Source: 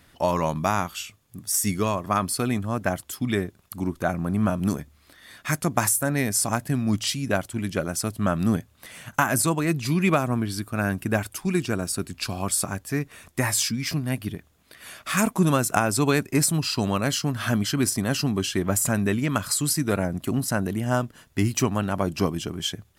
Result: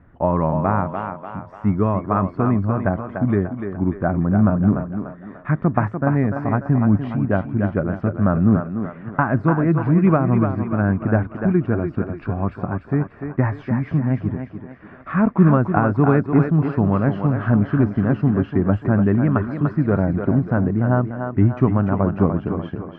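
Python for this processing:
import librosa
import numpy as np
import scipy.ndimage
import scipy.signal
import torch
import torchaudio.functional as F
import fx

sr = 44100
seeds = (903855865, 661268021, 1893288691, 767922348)

p1 = scipy.signal.sosfilt(scipy.signal.butter(4, 1600.0, 'lowpass', fs=sr, output='sos'), x)
p2 = fx.low_shelf(p1, sr, hz=310.0, db=8.0)
p3 = p2 + fx.echo_thinned(p2, sr, ms=294, feedback_pct=48, hz=260.0, wet_db=-5.5, dry=0)
y = p3 * 10.0 ** (1.5 / 20.0)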